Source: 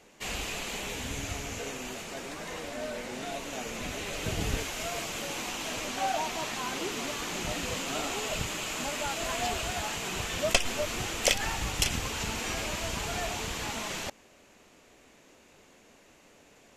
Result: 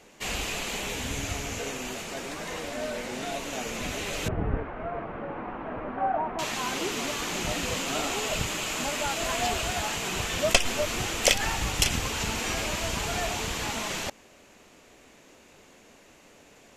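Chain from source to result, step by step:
0:04.28–0:06.39: low-pass filter 1,500 Hz 24 dB per octave
level +3.5 dB

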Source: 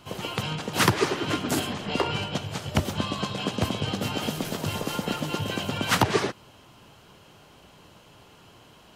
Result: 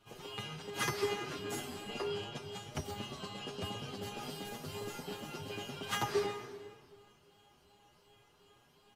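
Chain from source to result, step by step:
tuned comb filter 410 Hz, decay 0.37 s, harmonics all, mix 90%
convolution reverb RT60 1.7 s, pre-delay 120 ms, DRR 8.5 dB
barber-pole flanger 7 ms +2.7 Hz
level +4.5 dB

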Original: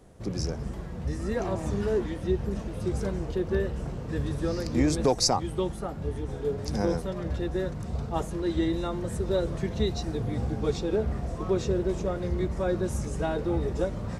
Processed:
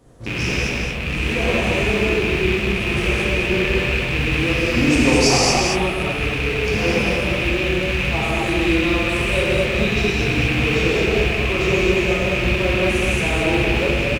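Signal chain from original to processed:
loose part that buzzes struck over −32 dBFS, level −16 dBFS
single-tap delay 223 ms −4.5 dB
reverb whose tail is shaped and stops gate 280 ms flat, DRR −7 dB

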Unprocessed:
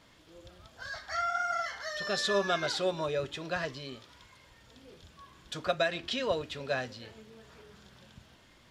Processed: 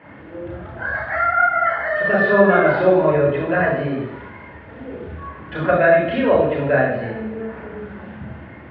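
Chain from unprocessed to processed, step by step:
low-pass filter 2,100 Hz 24 dB per octave
in parallel at +1.5 dB: downward compressor, threshold −45 dBFS, peak gain reduction 19.5 dB
on the sum: convolution reverb RT60 0.90 s, pre-delay 31 ms, DRR −3 dB
level +2 dB

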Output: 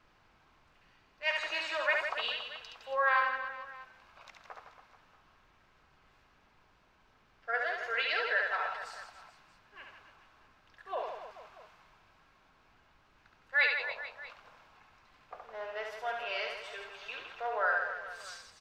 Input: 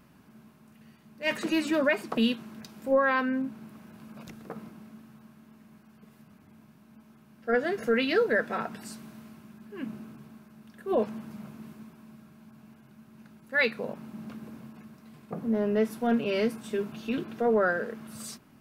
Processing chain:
inverse Chebyshev high-pass filter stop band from 160 Hz, stop band 70 dB
high-shelf EQ 4,500 Hz +9.5 dB
in parallel at −11.5 dB: bit reduction 8 bits
on the sum: reverse bouncing-ball delay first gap 70 ms, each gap 1.3×, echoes 5
background noise pink −64 dBFS
high-frequency loss of the air 190 metres
level −3.5 dB

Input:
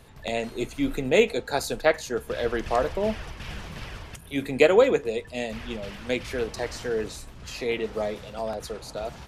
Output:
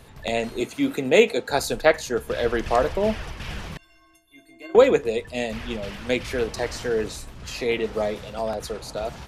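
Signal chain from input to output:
0:00.60–0:01.49: high-pass filter 160 Hz 12 dB per octave
0:03.77–0:04.75: stiff-string resonator 320 Hz, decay 0.66 s, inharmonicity 0.03
level +3.5 dB

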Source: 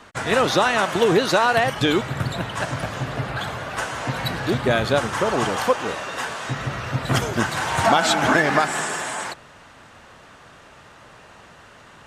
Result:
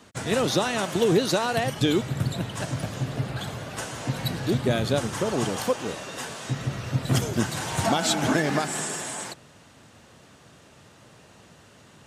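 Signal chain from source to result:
high-pass filter 89 Hz
parametric band 1,300 Hz −12 dB 2.8 octaves
level +1.5 dB

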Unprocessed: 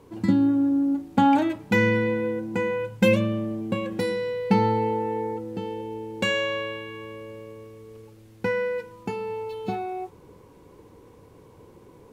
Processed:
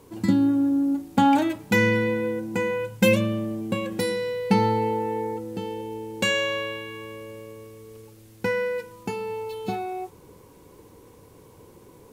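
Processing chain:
high-shelf EQ 5,300 Hz +11.5 dB

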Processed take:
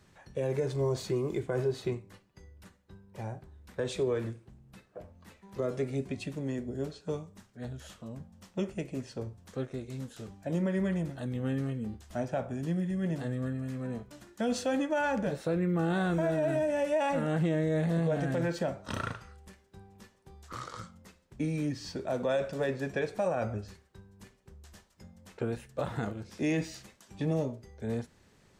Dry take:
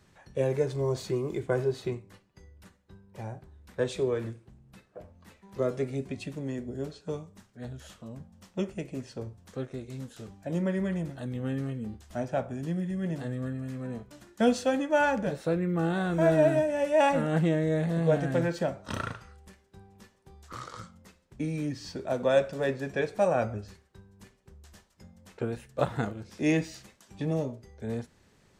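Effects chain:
brickwall limiter −21.5 dBFS, peak gain reduction 10.5 dB

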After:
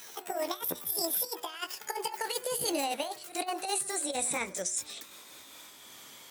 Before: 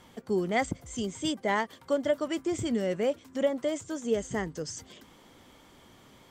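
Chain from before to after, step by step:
pitch glide at a constant tempo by +10.5 semitones ending unshifted
spectral tilt +4 dB per octave
compressor whose output falls as the input rises −32 dBFS, ratio −0.5
hum removal 121.2 Hz, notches 20
echo ahead of the sound 88 ms −18.5 dB

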